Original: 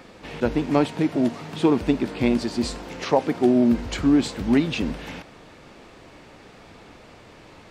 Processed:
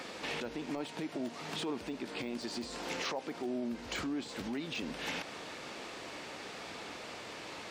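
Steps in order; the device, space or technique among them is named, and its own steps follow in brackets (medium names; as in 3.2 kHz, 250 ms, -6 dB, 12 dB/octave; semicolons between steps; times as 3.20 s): broadcast voice chain (high-pass 93 Hz 12 dB/octave; de-esser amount 95%; compression 3:1, threshold -37 dBFS, peak gain reduction 17 dB; peaking EQ 5.6 kHz +5 dB 2.5 oct; peak limiter -28.5 dBFS, peak gain reduction 8.5 dB); peaking EQ 110 Hz -9 dB 2.4 oct; trim +2.5 dB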